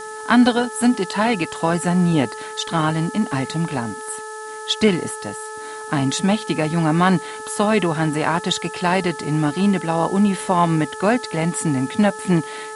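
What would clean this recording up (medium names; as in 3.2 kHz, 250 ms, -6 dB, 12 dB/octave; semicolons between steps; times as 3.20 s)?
de-hum 432.8 Hz, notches 4; noise print and reduce 30 dB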